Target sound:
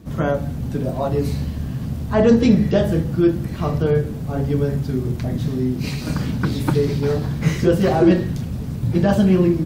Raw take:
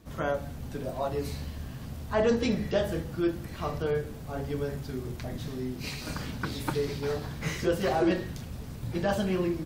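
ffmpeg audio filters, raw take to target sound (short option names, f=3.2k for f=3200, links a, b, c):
-af "equalizer=f=160:w=0.49:g=11,volume=5dB"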